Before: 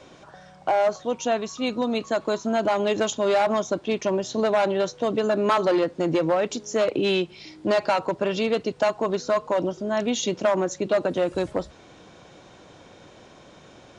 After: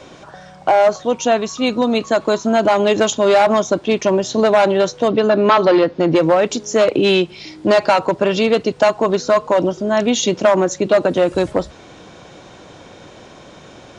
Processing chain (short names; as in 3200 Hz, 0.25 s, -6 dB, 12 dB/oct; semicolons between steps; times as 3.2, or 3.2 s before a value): 5.08–6.16 LPF 5200 Hz 24 dB/oct; gain +8.5 dB